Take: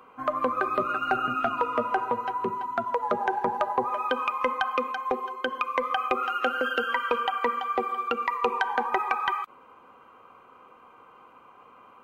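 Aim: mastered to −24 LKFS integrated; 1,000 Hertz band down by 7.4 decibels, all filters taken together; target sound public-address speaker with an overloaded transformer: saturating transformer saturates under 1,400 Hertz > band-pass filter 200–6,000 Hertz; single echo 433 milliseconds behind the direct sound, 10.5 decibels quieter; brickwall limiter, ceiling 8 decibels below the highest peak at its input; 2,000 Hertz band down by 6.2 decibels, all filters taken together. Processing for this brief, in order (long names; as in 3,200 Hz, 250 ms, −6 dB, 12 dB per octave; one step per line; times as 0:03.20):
parametric band 1,000 Hz −8 dB
parametric band 2,000 Hz −5 dB
brickwall limiter −23 dBFS
single-tap delay 433 ms −10.5 dB
saturating transformer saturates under 1,400 Hz
band-pass filter 200–6,000 Hz
level +13 dB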